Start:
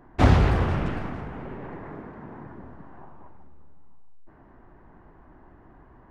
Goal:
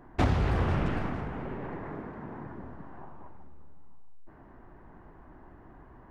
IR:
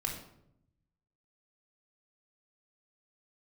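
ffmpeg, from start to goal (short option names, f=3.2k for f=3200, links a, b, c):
-af "acompressor=threshold=-22dB:ratio=6"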